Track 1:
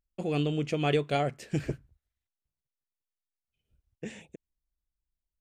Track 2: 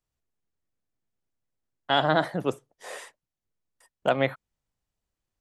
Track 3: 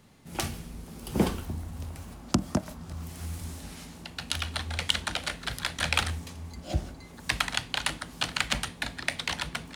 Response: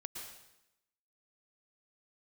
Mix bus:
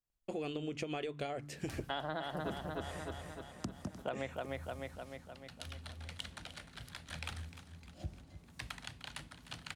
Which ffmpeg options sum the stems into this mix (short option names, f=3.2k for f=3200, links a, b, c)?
-filter_complex "[0:a]equalizer=f=170:w=5.2:g=-14,bandreject=f=145.9:t=h:w=4,bandreject=f=291.8:t=h:w=4,acompressor=threshold=-31dB:ratio=6,adelay=100,volume=-1.5dB[a];[1:a]volume=-10dB,asplit=2[b][c];[c]volume=-5dB[d];[2:a]equalizer=f=110:t=o:w=2:g=7.5,adelay=1300,volume=-18dB,asplit=2[e][f];[f]volume=-14dB[g];[d][g]amix=inputs=2:normalize=0,aecho=0:1:303|606|909|1212|1515|1818|2121|2424|2727:1|0.57|0.325|0.185|0.106|0.0602|0.0343|0.0195|0.0111[h];[a][b][e][h]amix=inputs=4:normalize=0,acompressor=threshold=-35dB:ratio=6"